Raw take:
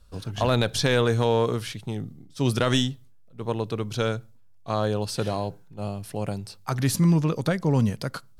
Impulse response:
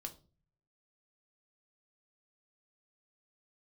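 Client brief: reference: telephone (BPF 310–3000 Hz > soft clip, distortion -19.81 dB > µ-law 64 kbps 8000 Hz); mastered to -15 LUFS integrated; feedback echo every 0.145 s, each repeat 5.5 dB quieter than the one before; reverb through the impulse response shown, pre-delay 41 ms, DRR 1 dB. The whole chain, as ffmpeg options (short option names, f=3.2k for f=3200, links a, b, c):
-filter_complex "[0:a]aecho=1:1:145|290|435|580|725|870|1015:0.531|0.281|0.149|0.079|0.0419|0.0222|0.0118,asplit=2[a][b];[1:a]atrim=start_sample=2205,adelay=41[c];[b][c]afir=irnorm=-1:irlink=0,volume=2.5dB[d];[a][d]amix=inputs=2:normalize=0,highpass=310,lowpass=3k,asoftclip=threshold=-13dB,volume=12dB" -ar 8000 -c:a pcm_mulaw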